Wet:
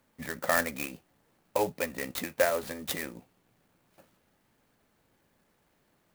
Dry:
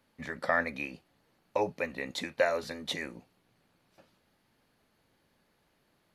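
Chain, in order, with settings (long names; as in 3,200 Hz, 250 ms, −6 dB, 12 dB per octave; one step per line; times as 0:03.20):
converter with an unsteady clock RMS 0.05 ms
level +1.5 dB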